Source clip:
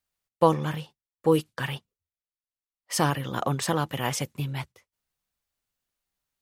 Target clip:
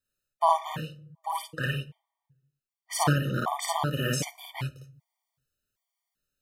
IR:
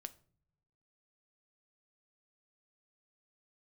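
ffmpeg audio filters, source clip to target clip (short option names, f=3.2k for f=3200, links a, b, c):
-filter_complex "[0:a]asplit=2[a][b];[1:a]atrim=start_sample=2205,adelay=55[c];[b][c]afir=irnorm=-1:irlink=0,volume=4.5dB[d];[a][d]amix=inputs=2:normalize=0,afftfilt=real='re*gt(sin(2*PI*1.3*pts/sr)*(1-2*mod(floor(b*sr/1024/610),2)),0)':imag='im*gt(sin(2*PI*1.3*pts/sr)*(1-2*mod(floor(b*sr/1024/610),2)),0)':win_size=1024:overlap=0.75"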